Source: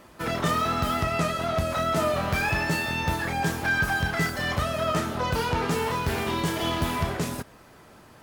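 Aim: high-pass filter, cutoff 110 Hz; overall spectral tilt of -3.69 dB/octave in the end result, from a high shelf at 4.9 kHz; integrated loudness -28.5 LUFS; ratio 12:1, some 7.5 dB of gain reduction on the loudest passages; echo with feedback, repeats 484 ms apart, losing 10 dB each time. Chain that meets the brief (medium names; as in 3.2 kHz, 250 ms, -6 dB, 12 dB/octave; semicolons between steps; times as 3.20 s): high-pass 110 Hz; treble shelf 4.9 kHz -6 dB; compression 12:1, threshold -29 dBFS; feedback delay 484 ms, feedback 32%, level -10 dB; trim +4 dB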